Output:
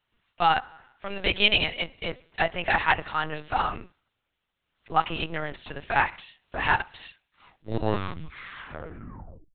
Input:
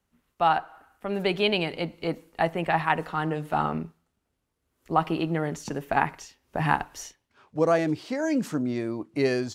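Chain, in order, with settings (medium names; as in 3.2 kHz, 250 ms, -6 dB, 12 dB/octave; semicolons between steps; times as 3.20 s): tape stop on the ending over 2.60 s; tilt EQ +4.5 dB/octave; LPC vocoder at 8 kHz pitch kept; trim +1 dB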